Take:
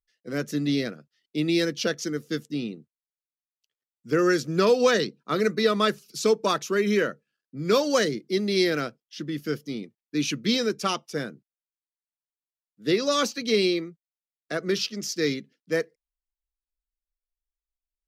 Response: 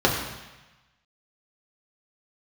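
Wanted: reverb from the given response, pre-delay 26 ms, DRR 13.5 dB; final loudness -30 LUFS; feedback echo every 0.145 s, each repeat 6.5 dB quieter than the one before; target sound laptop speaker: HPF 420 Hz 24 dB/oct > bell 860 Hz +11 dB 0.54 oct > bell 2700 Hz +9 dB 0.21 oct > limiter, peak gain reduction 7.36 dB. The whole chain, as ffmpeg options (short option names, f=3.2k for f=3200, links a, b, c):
-filter_complex "[0:a]aecho=1:1:145|290|435|580|725|870:0.473|0.222|0.105|0.0491|0.0231|0.0109,asplit=2[a][b];[1:a]atrim=start_sample=2205,adelay=26[c];[b][c]afir=irnorm=-1:irlink=0,volume=-32dB[d];[a][d]amix=inputs=2:normalize=0,highpass=f=420:w=0.5412,highpass=f=420:w=1.3066,equalizer=f=860:t=o:w=0.54:g=11,equalizer=f=2.7k:t=o:w=0.21:g=9,volume=-3.5dB,alimiter=limit=-17.5dB:level=0:latency=1"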